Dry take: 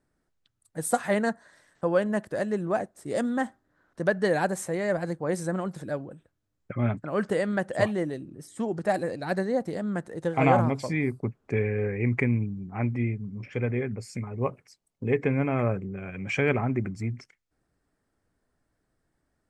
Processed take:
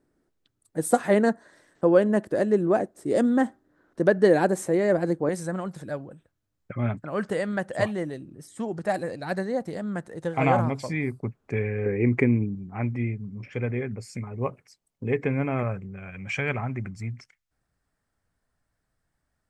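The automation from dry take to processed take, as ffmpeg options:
ffmpeg -i in.wav -af "asetnsamples=nb_out_samples=441:pad=0,asendcmd='5.29 equalizer g -2;11.86 equalizer g 7.5;12.55 equalizer g -1;15.63 equalizer g -9',equalizer=frequency=340:width_type=o:width=1.4:gain=9.5" out.wav

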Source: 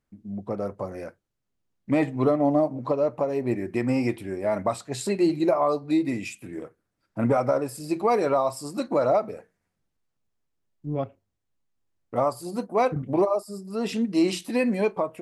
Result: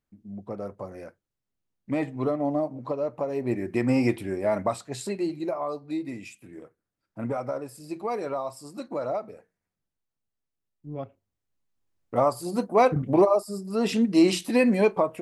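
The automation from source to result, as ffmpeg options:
ffmpeg -i in.wav -af "volume=13.5dB,afade=type=in:start_time=3.1:duration=1.04:silence=0.421697,afade=type=out:start_time=4.14:duration=1.18:silence=0.298538,afade=type=in:start_time=10.88:duration=1.72:silence=0.281838" out.wav

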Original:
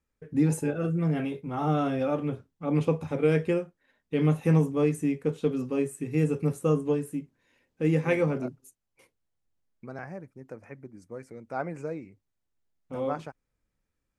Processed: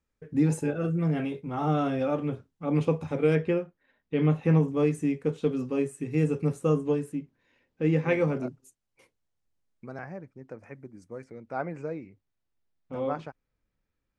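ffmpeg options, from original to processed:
ffmpeg -i in.wav -af "asetnsamples=nb_out_samples=441:pad=0,asendcmd='3.35 lowpass f 3800;4.68 lowpass f 8200;7.12 lowpass f 4800;8.21 lowpass f 9200;9.99 lowpass f 5300;10.59 lowpass f 10000;11.24 lowpass f 4800',lowpass=8700" out.wav

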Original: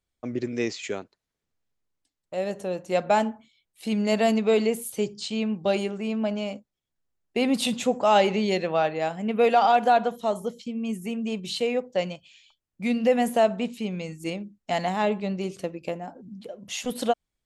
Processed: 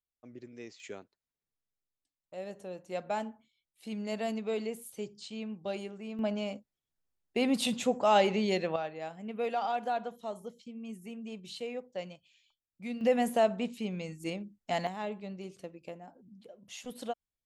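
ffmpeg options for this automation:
ffmpeg -i in.wav -af "asetnsamples=nb_out_samples=441:pad=0,asendcmd='0.8 volume volume -12.5dB;6.19 volume volume -5dB;8.76 volume volume -13dB;13.01 volume volume -5.5dB;14.87 volume volume -13dB',volume=-19dB" out.wav

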